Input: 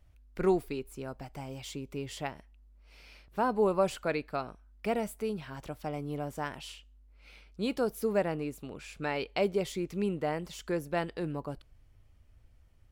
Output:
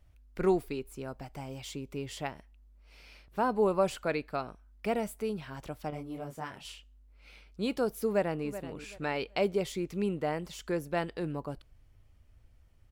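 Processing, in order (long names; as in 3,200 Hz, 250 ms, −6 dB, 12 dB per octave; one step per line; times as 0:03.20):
0:05.90–0:06.65: micro pitch shift up and down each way 26 cents
0:08.06–0:08.46: delay throw 380 ms, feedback 25%, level −13 dB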